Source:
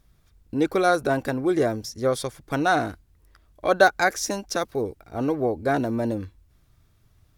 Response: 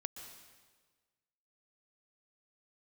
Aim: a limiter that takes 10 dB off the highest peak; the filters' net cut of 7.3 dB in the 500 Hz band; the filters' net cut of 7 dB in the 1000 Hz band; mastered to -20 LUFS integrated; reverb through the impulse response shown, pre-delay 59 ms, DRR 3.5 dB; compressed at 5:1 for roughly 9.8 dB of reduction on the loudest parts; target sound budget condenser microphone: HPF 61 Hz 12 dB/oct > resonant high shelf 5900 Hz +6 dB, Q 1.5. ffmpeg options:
-filter_complex "[0:a]equalizer=f=500:t=o:g=-7.5,equalizer=f=1k:t=o:g=-7,acompressor=threshold=-27dB:ratio=5,alimiter=level_in=2dB:limit=-24dB:level=0:latency=1,volume=-2dB,asplit=2[a][b];[1:a]atrim=start_sample=2205,adelay=59[c];[b][c]afir=irnorm=-1:irlink=0,volume=-1.5dB[d];[a][d]amix=inputs=2:normalize=0,highpass=61,highshelf=f=5.9k:t=q:w=1.5:g=6,volume=14dB"

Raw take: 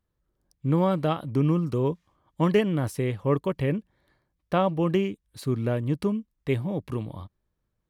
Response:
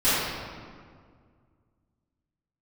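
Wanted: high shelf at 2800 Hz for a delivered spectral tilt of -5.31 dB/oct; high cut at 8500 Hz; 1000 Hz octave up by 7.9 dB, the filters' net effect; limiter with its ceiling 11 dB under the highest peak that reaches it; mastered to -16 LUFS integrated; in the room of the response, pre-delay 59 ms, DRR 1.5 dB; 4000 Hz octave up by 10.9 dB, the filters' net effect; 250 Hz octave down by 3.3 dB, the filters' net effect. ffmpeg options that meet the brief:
-filter_complex "[0:a]lowpass=8.5k,equalizer=f=250:t=o:g=-6,equalizer=f=1k:t=o:g=8.5,highshelf=f=2.8k:g=8.5,equalizer=f=4k:t=o:g=8,alimiter=limit=-15.5dB:level=0:latency=1,asplit=2[a][b];[1:a]atrim=start_sample=2205,adelay=59[c];[b][c]afir=irnorm=-1:irlink=0,volume=-19.5dB[d];[a][d]amix=inputs=2:normalize=0,volume=10dB"

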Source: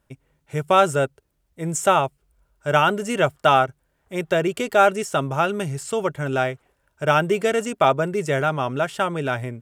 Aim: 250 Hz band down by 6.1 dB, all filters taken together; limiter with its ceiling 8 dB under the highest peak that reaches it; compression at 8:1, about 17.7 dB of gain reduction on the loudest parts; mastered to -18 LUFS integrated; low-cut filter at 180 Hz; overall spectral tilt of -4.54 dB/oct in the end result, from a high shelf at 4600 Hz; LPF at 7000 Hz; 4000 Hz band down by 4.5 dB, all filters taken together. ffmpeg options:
-af "highpass=180,lowpass=7k,equalizer=f=250:t=o:g=-7,equalizer=f=4k:t=o:g=-4.5,highshelf=f=4.6k:g=-4,acompressor=threshold=-31dB:ratio=8,volume=19.5dB,alimiter=limit=-4.5dB:level=0:latency=1"

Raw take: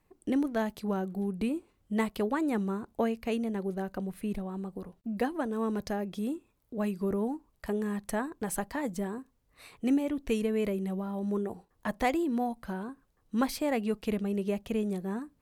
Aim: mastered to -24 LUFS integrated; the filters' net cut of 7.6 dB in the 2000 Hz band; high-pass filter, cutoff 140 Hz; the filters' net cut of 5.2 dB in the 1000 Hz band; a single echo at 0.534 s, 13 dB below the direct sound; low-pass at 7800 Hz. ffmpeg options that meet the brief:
-af "highpass=140,lowpass=7.8k,equalizer=f=1k:t=o:g=-6,equalizer=f=2k:t=o:g=-7.5,aecho=1:1:534:0.224,volume=10dB"

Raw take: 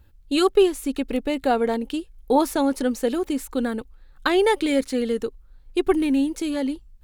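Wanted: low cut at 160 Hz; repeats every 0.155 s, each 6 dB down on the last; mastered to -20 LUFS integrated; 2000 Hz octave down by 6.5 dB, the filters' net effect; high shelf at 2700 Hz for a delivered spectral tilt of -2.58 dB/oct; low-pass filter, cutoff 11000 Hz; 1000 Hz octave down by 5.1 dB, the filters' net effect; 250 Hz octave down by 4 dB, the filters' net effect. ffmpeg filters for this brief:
-af "highpass=160,lowpass=11k,equalizer=f=250:t=o:g=-4,equalizer=f=1k:t=o:g=-5,equalizer=f=2k:t=o:g=-3.5,highshelf=f=2.7k:g=-7.5,aecho=1:1:155|310|465|620|775|930:0.501|0.251|0.125|0.0626|0.0313|0.0157,volume=5.5dB"

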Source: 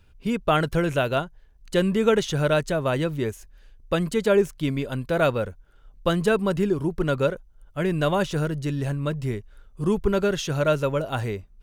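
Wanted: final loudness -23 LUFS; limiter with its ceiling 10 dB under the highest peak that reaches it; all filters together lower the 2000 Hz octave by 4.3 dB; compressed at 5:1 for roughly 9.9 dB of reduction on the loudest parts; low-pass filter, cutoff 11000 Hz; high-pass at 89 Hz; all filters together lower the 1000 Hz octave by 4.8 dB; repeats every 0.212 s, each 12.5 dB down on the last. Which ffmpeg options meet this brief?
-af "highpass=89,lowpass=11k,equalizer=f=1k:t=o:g=-6,equalizer=f=2k:t=o:g=-3.5,acompressor=threshold=-27dB:ratio=5,alimiter=level_in=3.5dB:limit=-24dB:level=0:latency=1,volume=-3.5dB,aecho=1:1:212|424|636:0.237|0.0569|0.0137,volume=13dB"

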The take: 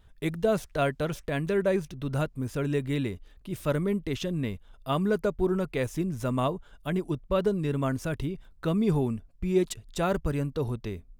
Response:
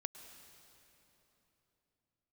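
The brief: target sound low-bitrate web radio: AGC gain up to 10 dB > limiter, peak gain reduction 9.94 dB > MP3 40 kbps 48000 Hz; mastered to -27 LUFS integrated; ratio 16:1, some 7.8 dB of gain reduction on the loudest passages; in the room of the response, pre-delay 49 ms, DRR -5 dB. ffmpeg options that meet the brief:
-filter_complex "[0:a]acompressor=threshold=-27dB:ratio=16,asplit=2[a][b];[1:a]atrim=start_sample=2205,adelay=49[c];[b][c]afir=irnorm=-1:irlink=0,volume=7.5dB[d];[a][d]amix=inputs=2:normalize=0,dynaudnorm=m=10dB,alimiter=limit=-23dB:level=0:latency=1,volume=5.5dB" -ar 48000 -c:a libmp3lame -b:a 40k

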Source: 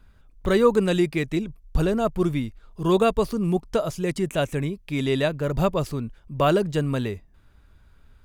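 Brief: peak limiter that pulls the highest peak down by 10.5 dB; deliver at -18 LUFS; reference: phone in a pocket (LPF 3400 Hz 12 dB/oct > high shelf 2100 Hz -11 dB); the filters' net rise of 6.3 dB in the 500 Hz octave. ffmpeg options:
-af "equalizer=f=500:t=o:g=8.5,alimiter=limit=-10.5dB:level=0:latency=1,lowpass=3.4k,highshelf=f=2.1k:g=-11,volume=4.5dB"

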